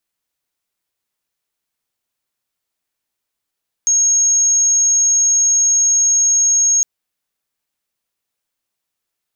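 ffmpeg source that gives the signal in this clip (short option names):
-f lavfi -i "aevalsrc='0.299*sin(2*PI*6540*t)':d=2.96:s=44100"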